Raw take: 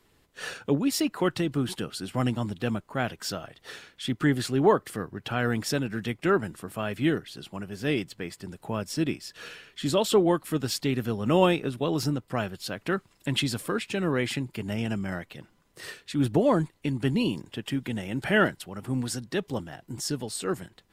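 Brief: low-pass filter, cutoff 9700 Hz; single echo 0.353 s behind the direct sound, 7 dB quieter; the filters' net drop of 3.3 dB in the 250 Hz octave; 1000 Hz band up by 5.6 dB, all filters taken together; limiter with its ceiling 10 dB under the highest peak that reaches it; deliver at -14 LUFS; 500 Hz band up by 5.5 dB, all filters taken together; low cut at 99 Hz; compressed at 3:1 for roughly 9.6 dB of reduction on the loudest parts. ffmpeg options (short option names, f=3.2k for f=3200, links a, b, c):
-af "highpass=99,lowpass=9.7k,equalizer=f=250:t=o:g=-8.5,equalizer=f=500:t=o:g=8.5,equalizer=f=1k:t=o:g=5,acompressor=threshold=-24dB:ratio=3,alimiter=limit=-22dB:level=0:latency=1,aecho=1:1:353:0.447,volume=19dB"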